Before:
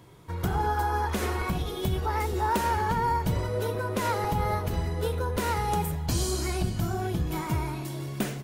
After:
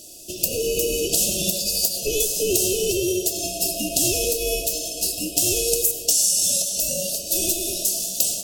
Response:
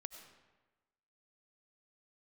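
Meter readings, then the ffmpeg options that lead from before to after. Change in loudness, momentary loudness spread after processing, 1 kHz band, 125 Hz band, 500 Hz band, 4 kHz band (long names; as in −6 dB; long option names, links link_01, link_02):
+8.5 dB, 6 LU, −15.0 dB, −9.5 dB, +6.5 dB, +15.0 dB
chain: -filter_complex "[0:a]aeval=exprs='val(0)*sin(2*PI*1300*n/s)':channel_layout=same,highshelf=frequency=4300:width_type=q:width=1.5:gain=13.5,acompressor=threshold=-28dB:ratio=16,asplit=2[link_01][link_02];[1:a]atrim=start_sample=2205[link_03];[link_02][link_03]afir=irnorm=-1:irlink=0,volume=10dB[link_04];[link_01][link_04]amix=inputs=2:normalize=0,afftfilt=real='re*(1-between(b*sr/4096,720,2500))':imag='im*(1-between(b*sr/4096,720,2500))':win_size=4096:overlap=0.75,volume=5dB"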